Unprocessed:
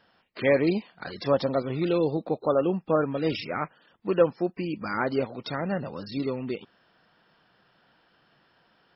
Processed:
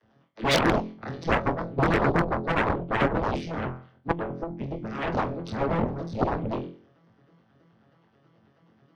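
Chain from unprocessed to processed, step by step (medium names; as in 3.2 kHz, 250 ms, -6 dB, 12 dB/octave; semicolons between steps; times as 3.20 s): vocoder on a broken chord major triad, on A2, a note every 107 ms; 1.35–1.89 s: gate -25 dBFS, range -16 dB; bass shelf 300 Hz +8.5 dB; on a send: flutter echo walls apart 4 m, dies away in 0.47 s; 4.11–4.95 s: on the sum: compression 6:1, threshold -26 dBFS, peak gain reduction 12.5 dB; Chebyshev shaper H 7 -7 dB, 8 -19 dB, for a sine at -9 dBFS; in parallel at -6 dB: saturation -22 dBFS, distortion -5 dB; on the sum: harmonic-percussive split harmonic -12 dB; trim -3 dB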